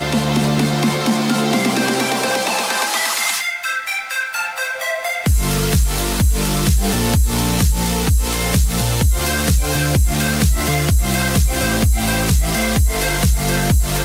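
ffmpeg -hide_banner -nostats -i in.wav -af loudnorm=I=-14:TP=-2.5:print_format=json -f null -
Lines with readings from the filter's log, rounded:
"input_i" : "-17.1",
"input_tp" : "-5.5",
"input_lra" : "2.0",
"input_thresh" : "-27.1",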